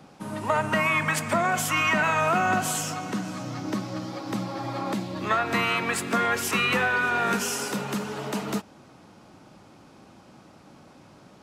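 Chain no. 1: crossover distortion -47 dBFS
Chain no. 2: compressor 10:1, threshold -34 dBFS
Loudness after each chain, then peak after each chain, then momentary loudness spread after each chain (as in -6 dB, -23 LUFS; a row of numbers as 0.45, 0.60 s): -26.0, -37.0 LUFS; -12.0, -23.0 dBFS; 11, 16 LU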